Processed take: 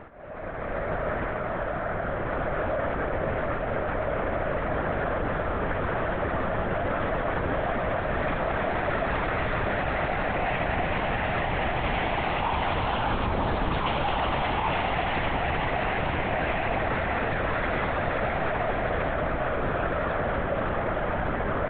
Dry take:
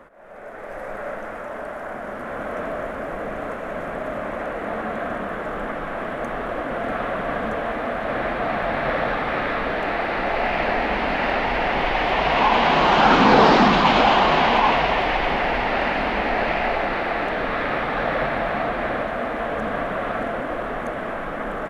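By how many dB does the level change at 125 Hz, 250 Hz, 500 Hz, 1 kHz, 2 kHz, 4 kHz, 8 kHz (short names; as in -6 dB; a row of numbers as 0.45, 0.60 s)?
+2.5 dB, -6.5 dB, -4.5 dB, -7.0 dB, -5.5 dB, -9.5 dB, n/a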